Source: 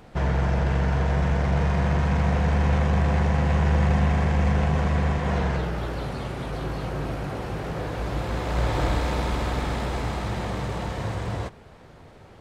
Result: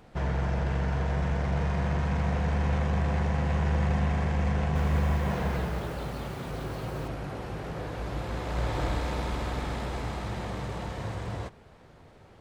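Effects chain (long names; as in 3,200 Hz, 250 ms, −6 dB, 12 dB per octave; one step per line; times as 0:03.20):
0:04.58–0:07.08: feedback echo at a low word length 175 ms, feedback 55%, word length 7 bits, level −6 dB
level −5.5 dB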